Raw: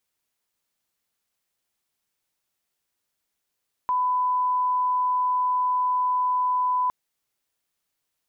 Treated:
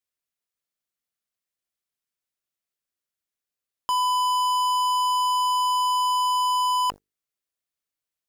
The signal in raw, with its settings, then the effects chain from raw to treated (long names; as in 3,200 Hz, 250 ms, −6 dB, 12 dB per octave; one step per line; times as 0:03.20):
line-up tone −20 dBFS 3.01 s
parametric band 880 Hz −7.5 dB 0.24 octaves
mains-hum notches 50/100/150/200/250/300/350/400/450 Hz
leveller curve on the samples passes 5